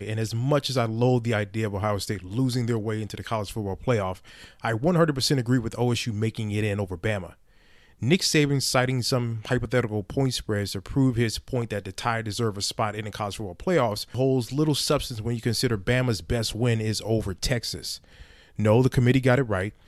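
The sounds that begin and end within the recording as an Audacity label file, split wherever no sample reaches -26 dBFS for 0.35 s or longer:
4.650000	7.180000	sound
8.020000	17.940000	sound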